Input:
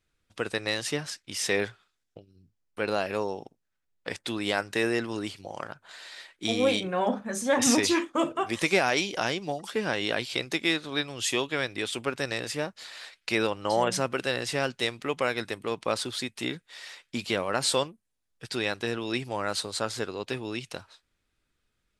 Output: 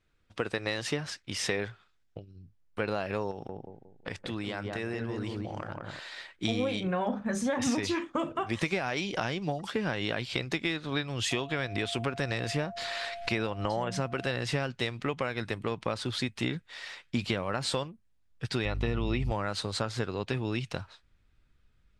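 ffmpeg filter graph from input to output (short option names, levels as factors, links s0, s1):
-filter_complex "[0:a]asettb=1/sr,asplit=3[s0][s1][s2];[s0]atrim=end=3.314[s3];[s1]atrim=start=3.31:end=6,asetpts=PTS-STARTPTS,afade=t=in:d=0.004:c=qsin,afade=t=out:st=2.686:d=0.004:c=qsin,asplit=2[s4][s5];[s5]adelay=179,lowpass=f=880:p=1,volume=0.668,asplit=2[s6][s7];[s7]adelay=179,lowpass=f=880:p=1,volume=0.37,asplit=2[s8][s9];[s9]adelay=179,lowpass=f=880:p=1,volume=0.37,asplit=2[s10][s11];[s11]adelay=179,lowpass=f=880:p=1,volume=0.37,asplit=2[s12][s13];[s13]adelay=179,lowpass=f=880:p=1,volume=0.37[s14];[s4][s6][s8][s10][s12][s14]amix=inputs=6:normalize=0,atrim=end_sample=118629,acompressor=threshold=0.0141:ratio=3:attack=3.2:release=140:knee=1:detection=peak[s15];[s2]atrim=start=5.996[s16];[s3][s15]acrossfade=d=0.004:c1=hsin:c2=qsin[s17];[s17][s16]acrossfade=d=0.004:c1=qsin:c2=hsin,asettb=1/sr,asplit=3[s18][s19][s20];[s18]atrim=end=11.314[s21];[s19]atrim=start=11.31:end=14.32,asetpts=PTS-STARTPTS,afade=t=in:d=0.004:c=qsin,afade=t=out:st=3.006:d=0.004:c=qsin,acompressor=mode=upward:threshold=0.0398:ratio=2.5:attack=3.2:release=140:knee=2.83:detection=peak,aeval=exprs='val(0)+0.00891*sin(2*PI*690*n/s)':c=same[s22];[s20]atrim=start=14.316[s23];[s21][s22]acrossfade=d=0.004:c1=hsin:c2=qsin[s24];[s24][s23]acrossfade=d=0.004:c1=qsin:c2=hsin,asettb=1/sr,asplit=3[s25][s26][s27];[s25]atrim=end=18.654[s28];[s26]atrim=start=18.65:end=19.32,asetpts=PTS-STARTPTS,afade=t=in:d=0.004:c=qsin,afade=t=out:st=0.666:d=0.004:c=qsin,acrossover=split=4100[s29][s30];[s30]acompressor=threshold=0.00251:ratio=4:attack=1:release=60[s31];[s29][s31]amix=inputs=2:normalize=0,aeval=exprs='val(0)+0.00891*(sin(2*PI*50*n/s)+sin(2*PI*2*50*n/s)/2+sin(2*PI*3*50*n/s)/3+sin(2*PI*4*50*n/s)/4+sin(2*PI*5*50*n/s)/5)':c=same,asuperstop=centerf=1600:order=4:qfactor=6.6[s32];[s27]atrim=start=19.316[s33];[s28][s32]acrossfade=d=0.004:c1=hsin:c2=qsin[s34];[s34][s33]acrossfade=d=0.004:c1=qsin:c2=hsin,aemphasis=mode=reproduction:type=50fm,acompressor=threshold=0.0316:ratio=6,asubboost=boost=2.5:cutoff=190,volume=1.5"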